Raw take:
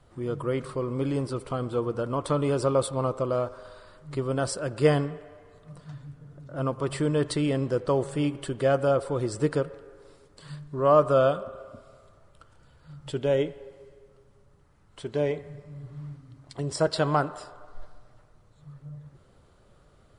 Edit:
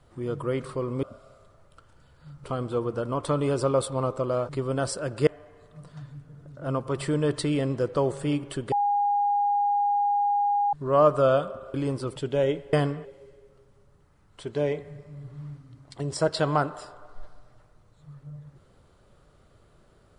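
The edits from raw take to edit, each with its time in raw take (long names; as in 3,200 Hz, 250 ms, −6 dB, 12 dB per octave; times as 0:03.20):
0:01.03–0:01.45: swap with 0:11.66–0:13.07
0:03.50–0:04.09: remove
0:04.87–0:05.19: move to 0:13.64
0:08.64–0:10.65: beep over 816 Hz −20.5 dBFS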